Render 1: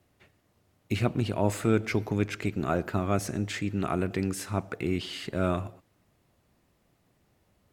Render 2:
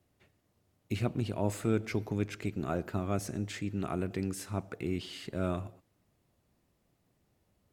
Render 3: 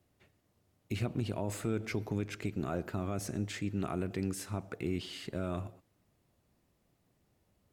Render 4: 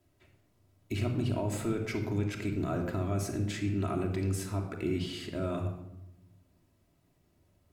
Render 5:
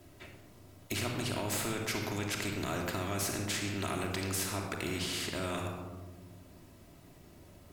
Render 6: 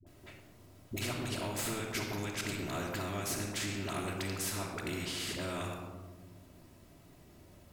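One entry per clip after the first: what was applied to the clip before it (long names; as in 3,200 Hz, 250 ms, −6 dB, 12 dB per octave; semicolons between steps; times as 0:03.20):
parametric band 1,600 Hz −3.5 dB 2.5 octaves; level −4.5 dB
brickwall limiter −23 dBFS, peak gain reduction 7.5 dB
rectangular room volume 3,300 cubic metres, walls furnished, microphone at 2.9 metres
every bin compressed towards the loudest bin 2 to 1
all-pass dispersion highs, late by 66 ms, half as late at 490 Hz; level −2 dB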